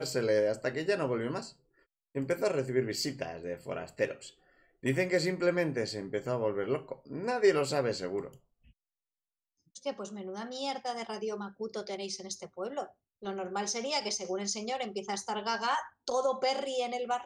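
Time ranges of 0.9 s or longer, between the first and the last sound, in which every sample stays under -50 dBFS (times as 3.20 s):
8.37–9.75 s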